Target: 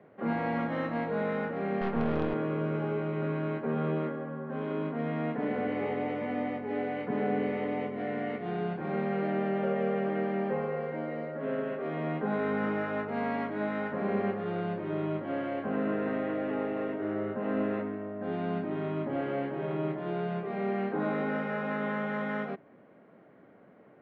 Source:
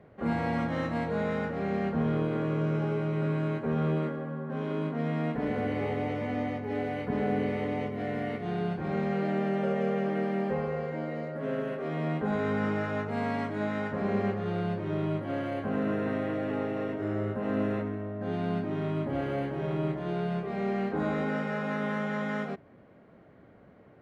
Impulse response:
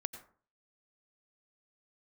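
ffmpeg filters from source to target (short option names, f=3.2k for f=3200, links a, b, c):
-filter_complex "[0:a]acrossover=split=150 3600:gain=0.0891 1 0.0891[a][b][c];[a][b][c]amix=inputs=3:normalize=0,asettb=1/sr,asplit=3[d][e][f];[d]atrim=end=1.814[g];[e]atrim=start=1.81:end=2.34,asetpts=PTS-STARTPTS,afade=t=in:d=0.004:c=qsin,afade=t=out:st=0.526:d=0.004:c=qsin,aeval=exprs='0.119*(cos(1*acos(clip(val(0)/0.119,-1,1)))-cos(1*PI/2))+0.0168*(cos(6*acos(clip(val(0)/0.119,-1,1)))-cos(6*PI/2))':c=same[h];[f]atrim=start=2.336[i];[g][h]acrossfade=d=0.004:c1=hsin:c2=qsin[j];[j][i]acrossfade=d=0.004:c1=qsin:c2=hsin"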